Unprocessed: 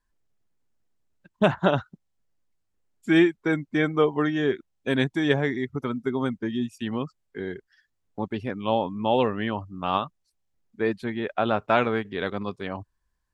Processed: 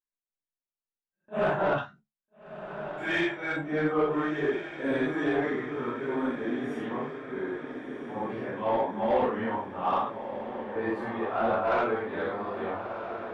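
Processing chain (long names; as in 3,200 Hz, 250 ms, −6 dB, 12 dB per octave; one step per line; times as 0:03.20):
random phases in long frames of 200 ms
parametric band 3,900 Hz −11 dB 1.5 octaves, from 0:01.78 370 Hz, from 0:03.56 3,100 Hz
noise gate with hold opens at −47 dBFS
mid-hump overdrive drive 18 dB, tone 1,800 Hz, clips at −7.5 dBFS
flanger 0.18 Hz, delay 9.6 ms, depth 5.9 ms, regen +55%
feedback delay with all-pass diffusion 1,352 ms, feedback 59%, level −9.5 dB
every ending faded ahead of time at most 280 dB per second
level −3.5 dB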